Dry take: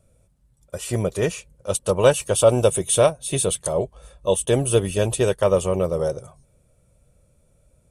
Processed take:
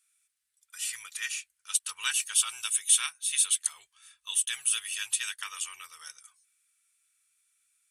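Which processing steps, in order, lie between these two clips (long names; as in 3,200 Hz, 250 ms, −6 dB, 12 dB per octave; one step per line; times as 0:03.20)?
inverse Chebyshev high-pass filter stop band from 640 Hz, stop band 50 dB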